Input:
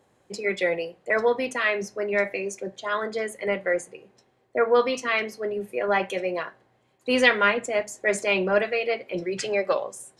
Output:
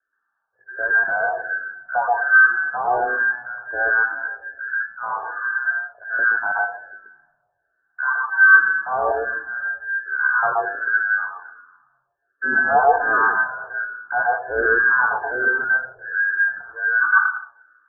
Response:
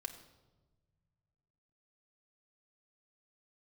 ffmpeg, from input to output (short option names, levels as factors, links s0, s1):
-filter_complex "[0:a]acontrast=37,afwtdn=0.0794,equalizer=f=230:t=o:w=2.1:g=-5,lowpass=f=2700:t=q:w=0.5098,lowpass=f=2700:t=q:w=0.6013,lowpass=f=2700:t=q:w=0.9,lowpass=f=2700:t=q:w=2.563,afreqshift=-3200,asetrate=25137,aresample=44100,asplit=2[s0][s1];[s1]tiltshelf=f=740:g=-5.5[s2];[1:a]atrim=start_sample=2205,adelay=126[s3];[s2][s3]afir=irnorm=-1:irlink=0,volume=1.5[s4];[s0][s4]amix=inputs=2:normalize=0,asplit=2[s5][s6];[s6]afreqshift=-1.3[s7];[s5][s7]amix=inputs=2:normalize=1,volume=0.891"